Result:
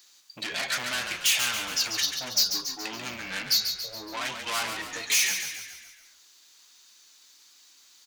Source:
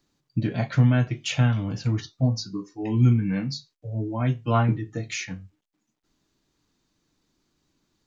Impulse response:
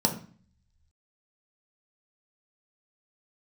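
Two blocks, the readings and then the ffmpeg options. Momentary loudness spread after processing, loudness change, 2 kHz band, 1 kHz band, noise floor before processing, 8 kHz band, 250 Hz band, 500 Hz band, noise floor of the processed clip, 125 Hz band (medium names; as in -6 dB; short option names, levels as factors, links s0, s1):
12 LU, -1.5 dB, +6.5 dB, -3.0 dB, -78 dBFS, no reading, -19.0 dB, -9.0 dB, -57 dBFS, -30.5 dB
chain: -filter_complex "[0:a]asplit=2[s0][s1];[s1]highpass=f=720:p=1,volume=39.8,asoftclip=type=tanh:threshold=0.422[s2];[s0][s2]amix=inputs=2:normalize=0,lowpass=f=5200:p=1,volume=0.501,aderivative,asplit=7[s3][s4][s5][s6][s7][s8][s9];[s4]adelay=140,afreqshift=-40,volume=0.447[s10];[s5]adelay=280,afreqshift=-80,volume=0.237[s11];[s6]adelay=420,afreqshift=-120,volume=0.126[s12];[s7]adelay=560,afreqshift=-160,volume=0.0668[s13];[s8]adelay=700,afreqshift=-200,volume=0.0351[s14];[s9]adelay=840,afreqshift=-240,volume=0.0186[s15];[s3][s10][s11][s12][s13][s14][s15]amix=inputs=7:normalize=0"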